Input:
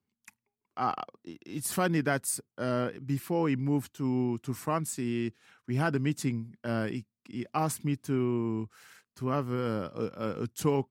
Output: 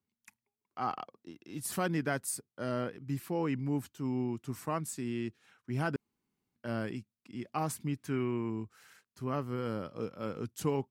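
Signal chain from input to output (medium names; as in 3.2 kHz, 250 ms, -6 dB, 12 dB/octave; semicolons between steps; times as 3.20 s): 5.96–6.56 s: room tone; 7.96–8.50 s: peaking EQ 1.9 kHz +7.5 dB 1.4 oct; trim -4.5 dB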